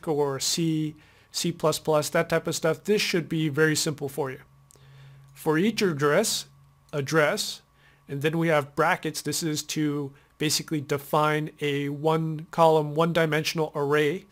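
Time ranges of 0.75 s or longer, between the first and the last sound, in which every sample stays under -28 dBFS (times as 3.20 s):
4.33–5.46 s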